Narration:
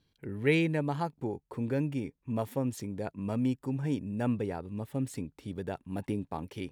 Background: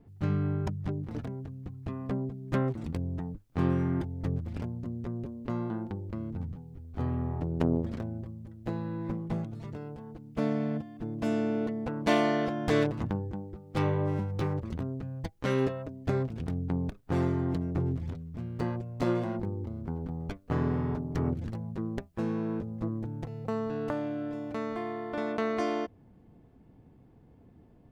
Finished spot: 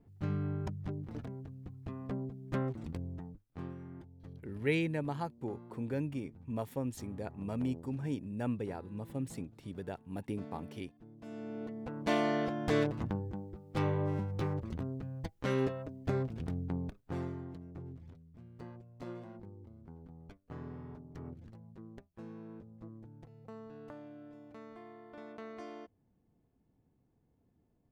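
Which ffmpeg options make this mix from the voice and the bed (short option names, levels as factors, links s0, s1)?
-filter_complex "[0:a]adelay=4200,volume=0.562[s0];[1:a]volume=2.82,afade=t=out:st=2.86:d=0.89:silence=0.223872,afade=t=in:st=11.25:d=1.12:silence=0.177828,afade=t=out:st=16.48:d=1.05:silence=0.237137[s1];[s0][s1]amix=inputs=2:normalize=0"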